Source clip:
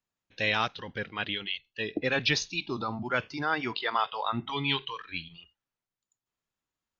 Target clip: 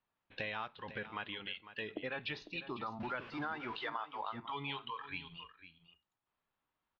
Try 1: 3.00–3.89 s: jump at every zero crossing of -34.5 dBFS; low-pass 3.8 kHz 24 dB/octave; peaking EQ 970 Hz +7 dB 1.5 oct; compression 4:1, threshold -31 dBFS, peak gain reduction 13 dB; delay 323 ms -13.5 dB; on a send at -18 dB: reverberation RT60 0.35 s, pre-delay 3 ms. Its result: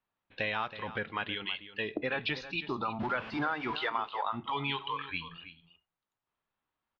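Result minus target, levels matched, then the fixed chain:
compression: peak gain reduction -7.5 dB; echo 178 ms early
3.00–3.89 s: jump at every zero crossing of -34.5 dBFS; low-pass 3.8 kHz 24 dB/octave; peaking EQ 970 Hz +7 dB 1.5 oct; compression 4:1, threshold -41 dBFS, peak gain reduction 20.5 dB; delay 501 ms -13.5 dB; on a send at -18 dB: reverberation RT60 0.35 s, pre-delay 3 ms

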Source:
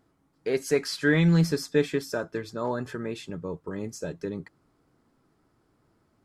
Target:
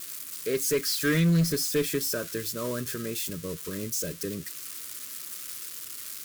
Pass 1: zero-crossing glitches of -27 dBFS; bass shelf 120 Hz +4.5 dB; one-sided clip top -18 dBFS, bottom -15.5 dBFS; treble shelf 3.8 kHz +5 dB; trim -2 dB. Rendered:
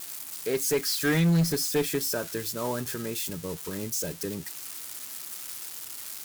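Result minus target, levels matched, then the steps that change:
1 kHz band +5.0 dB
add after one-sided clip: Butterworth band-stop 810 Hz, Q 2

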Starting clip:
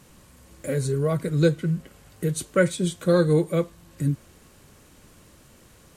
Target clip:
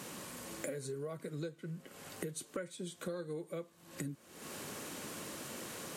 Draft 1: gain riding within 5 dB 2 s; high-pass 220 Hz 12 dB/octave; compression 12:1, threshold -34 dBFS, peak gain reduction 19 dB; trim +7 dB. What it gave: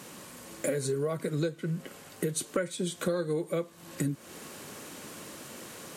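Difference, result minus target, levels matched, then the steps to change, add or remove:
compression: peak gain reduction -11 dB
change: compression 12:1, threshold -46 dBFS, peak gain reduction 30 dB

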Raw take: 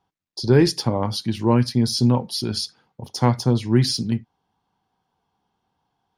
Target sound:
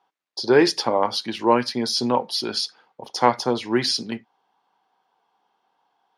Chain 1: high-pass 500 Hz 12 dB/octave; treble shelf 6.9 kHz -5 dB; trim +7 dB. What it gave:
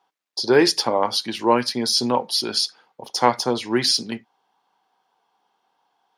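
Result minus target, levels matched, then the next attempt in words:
8 kHz band +4.5 dB
high-pass 500 Hz 12 dB/octave; treble shelf 6.9 kHz -16.5 dB; trim +7 dB

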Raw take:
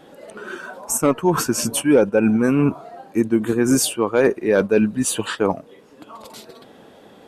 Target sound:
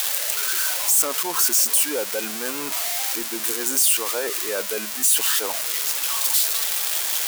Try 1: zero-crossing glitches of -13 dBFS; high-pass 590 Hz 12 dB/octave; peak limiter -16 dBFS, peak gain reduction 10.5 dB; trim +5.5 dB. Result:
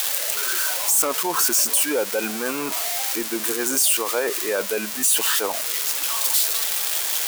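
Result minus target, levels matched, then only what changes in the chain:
zero-crossing glitches: distortion -6 dB
change: zero-crossing glitches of -6.5 dBFS

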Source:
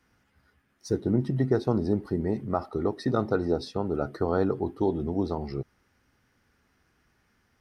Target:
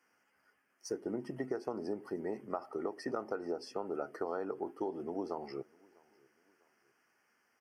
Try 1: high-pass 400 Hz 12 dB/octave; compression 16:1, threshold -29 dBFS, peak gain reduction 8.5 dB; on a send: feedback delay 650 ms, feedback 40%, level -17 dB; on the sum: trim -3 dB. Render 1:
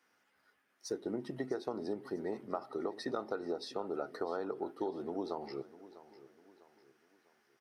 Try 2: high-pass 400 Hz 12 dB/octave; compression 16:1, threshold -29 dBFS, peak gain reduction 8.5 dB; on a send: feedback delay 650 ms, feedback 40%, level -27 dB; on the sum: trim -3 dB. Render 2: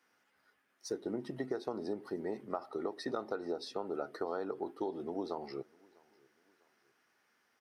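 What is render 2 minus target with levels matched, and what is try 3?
4 kHz band +4.5 dB
high-pass 400 Hz 12 dB/octave; compression 16:1, threshold -29 dBFS, peak gain reduction 8.5 dB; Butterworth band-stop 3.8 kHz, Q 2.4; on a send: feedback delay 650 ms, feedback 40%, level -27 dB; on the sum: trim -3 dB

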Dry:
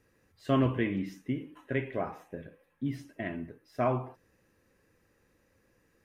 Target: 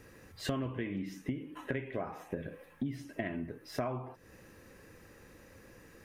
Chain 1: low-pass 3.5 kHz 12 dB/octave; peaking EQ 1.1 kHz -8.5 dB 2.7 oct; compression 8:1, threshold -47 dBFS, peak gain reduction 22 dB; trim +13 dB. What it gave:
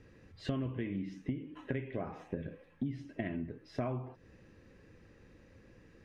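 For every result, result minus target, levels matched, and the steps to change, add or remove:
4 kHz band -5.5 dB; 1 kHz band -3.5 dB
remove: low-pass 3.5 kHz 12 dB/octave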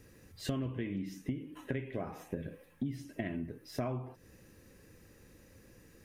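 1 kHz band -3.5 dB
remove: peaking EQ 1.1 kHz -8.5 dB 2.7 oct

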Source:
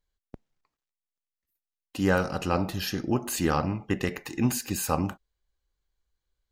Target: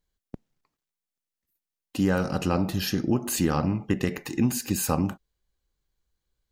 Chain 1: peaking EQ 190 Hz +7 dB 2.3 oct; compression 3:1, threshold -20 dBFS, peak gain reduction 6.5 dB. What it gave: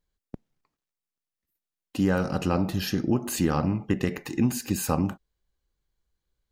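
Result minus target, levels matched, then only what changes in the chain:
8 kHz band -2.5 dB
add after compression: treble shelf 3.6 kHz +3.5 dB

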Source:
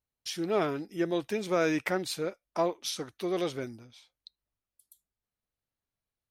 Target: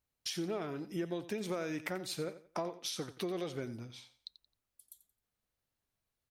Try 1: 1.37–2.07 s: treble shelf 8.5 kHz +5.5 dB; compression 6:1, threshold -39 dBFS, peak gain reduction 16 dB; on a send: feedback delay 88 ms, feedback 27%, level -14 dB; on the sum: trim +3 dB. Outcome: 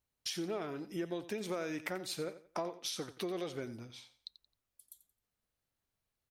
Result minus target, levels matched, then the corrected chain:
125 Hz band -3.0 dB
1.37–2.07 s: treble shelf 8.5 kHz +5.5 dB; compression 6:1, threshold -39 dBFS, peak gain reduction 16 dB; dynamic bell 140 Hz, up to +4 dB, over -59 dBFS, Q 0.94; on a send: feedback delay 88 ms, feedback 27%, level -14 dB; on the sum: trim +3 dB

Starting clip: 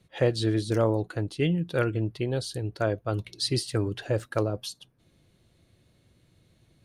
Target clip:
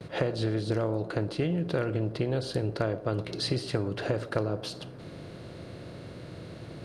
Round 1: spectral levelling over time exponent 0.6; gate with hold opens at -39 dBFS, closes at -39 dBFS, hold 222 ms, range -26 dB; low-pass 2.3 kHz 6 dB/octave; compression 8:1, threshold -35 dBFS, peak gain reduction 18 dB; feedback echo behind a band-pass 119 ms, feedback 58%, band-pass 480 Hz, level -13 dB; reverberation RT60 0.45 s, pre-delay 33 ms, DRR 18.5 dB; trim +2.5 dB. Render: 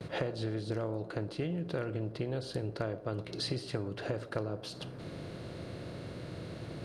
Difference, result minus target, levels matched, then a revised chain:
compression: peak gain reduction +6.5 dB
spectral levelling over time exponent 0.6; gate with hold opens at -39 dBFS, closes at -39 dBFS, hold 222 ms, range -26 dB; low-pass 2.3 kHz 6 dB/octave; compression 8:1, threshold -27.5 dBFS, peak gain reduction 11.5 dB; feedback echo behind a band-pass 119 ms, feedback 58%, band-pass 480 Hz, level -13 dB; reverberation RT60 0.45 s, pre-delay 33 ms, DRR 18.5 dB; trim +2.5 dB

